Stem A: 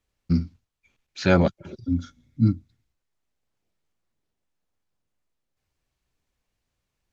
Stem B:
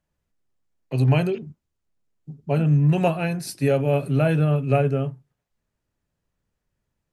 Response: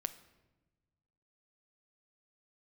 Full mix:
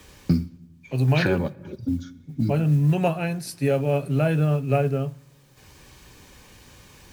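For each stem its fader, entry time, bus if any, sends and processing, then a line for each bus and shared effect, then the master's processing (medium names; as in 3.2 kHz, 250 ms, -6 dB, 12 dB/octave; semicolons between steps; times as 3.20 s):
0.0 dB, 0.00 s, send -6.5 dB, comb of notches 680 Hz; three bands compressed up and down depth 100%; auto duck -9 dB, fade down 1.90 s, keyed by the second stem
-3.5 dB, 0.00 s, send -12 dB, none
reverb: on, pre-delay 7 ms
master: modulation noise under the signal 35 dB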